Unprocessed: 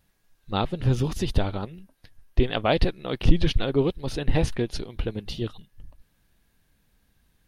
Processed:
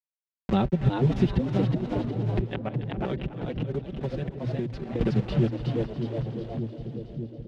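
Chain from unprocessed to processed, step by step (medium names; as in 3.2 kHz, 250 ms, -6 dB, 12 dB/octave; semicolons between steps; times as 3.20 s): send-on-delta sampling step -34 dBFS; dynamic bell 1.1 kHz, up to -6 dB, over -49 dBFS, Q 3.4; inverted gate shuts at -12 dBFS, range -27 dB; comb 5.2 ms, depth 77%; frequency-shifting echo 365 ms, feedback 31%, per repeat +110 Hz, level -6 dB; gate with hold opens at -42 dBFS; low-pass 2.9 kHz 12 dB/octave; bass shelf 250 Hz +9 dB; 2.44–5.01 s: compression, threshold -33 dBFS, peak gain reduction 20 dB; high-pass 66 Hz 12 dB/octave; two-band feedback delay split 560 Hz, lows 597 ms, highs 280 ms, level -15.5 dB; three bands compressed up and down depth 70%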